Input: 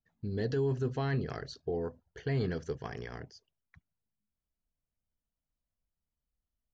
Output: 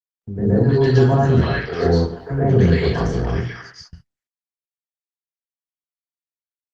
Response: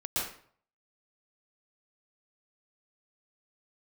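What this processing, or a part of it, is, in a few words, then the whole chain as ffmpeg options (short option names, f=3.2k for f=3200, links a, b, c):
speakerphone in a meeting room: -filter_complex "[0:a]asettb=1/sr,asplit=3[a][b][c];[a]atrim=end=0.814[d];[b]atrim=start=0.81:end=1.72,asetpts=PTS-STARTPTS,afade=t=in:d=0.004:c=qsin,afade=t=out:st=0.906:d=0.004:c=qsin,lowpass=5.3k[e];[c]atrim=start=1.716[f];[d][e]acrossfade=d=0.004:c1=hsin:c2=qsin[g];[g][f]acrossfade=d=0.004:c1=qsin:c2=hsin,asettb=1/sr,asplit=3[h][i][j];[h]atrim=end=2.724[k];[i]atrim=start=2.72:end=3.3,asetpts=PTS-STARTPTS,afade=t=in:d=0.004:c=qsin,afade=t=out:st=0.576:d=0.004:c=qsin,tiltshelf=f=970:g=4.5[l];[j]atrim=start=3.296[m];[k][l]acrossfade=d=0.004:c1=hsin:c2=qsin[n];[n][m]acrossfade=d=0.004:c1=qsin:c2=hsin,acrossover=split=430|1300[o][p][q];[o]adelay=40[r];[q]adelay=320[s];[r][p][s]amix=inputs=3:normalize=0[t];[1:a]atrim=start_sample=2205[u];[t][u]afir=irnorm=-1:irlink=0,asplit=2[v][w];[w]adelay=270,highpass=300,lowpass=3.4k,asoftclip=type=hard:threshold=-26dB,volume=-22dB[x];[v][x]amix=inputs=2:normalize=0,dynaudnorm=f=140:g=5:m=5dB,agate=range=-47dB:threshold=-49dB:ratio=16:detection=peak,volume=8.5dB" -ar 48000 -c:a libopus -b:a 20k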